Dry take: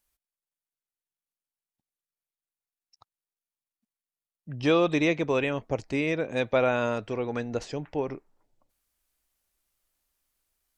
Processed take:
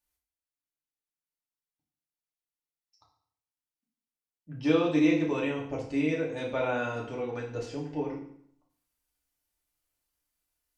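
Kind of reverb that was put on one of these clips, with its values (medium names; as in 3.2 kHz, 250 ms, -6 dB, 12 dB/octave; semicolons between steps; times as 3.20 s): FDN reverb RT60 0.61 s, low-frequency decay 1.2×, high-frequency decay 0.95×, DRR -4 dB; trim -10 dB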